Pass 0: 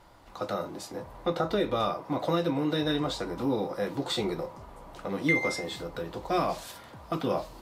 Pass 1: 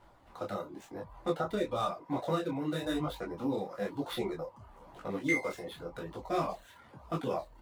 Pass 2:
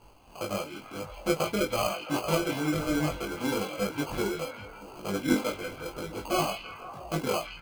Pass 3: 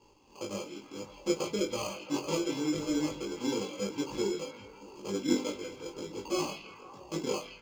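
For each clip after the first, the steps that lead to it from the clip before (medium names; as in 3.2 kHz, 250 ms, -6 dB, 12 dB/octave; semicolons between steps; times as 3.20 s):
median filter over 9 samples; reverb removal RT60 0.73 s; detune thickener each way 34 cents
sample-and-hold 24×; doubling 20 ms -4.5 dB; repeats whose band climbs or falls 166 ms, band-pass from 2.8 kHz, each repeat -0.7 oct, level -5 dB; trim +3 dB
reverberation RT60 0.70 s, pre-delay 3 ms, DRR 15 dB; trim -6 dB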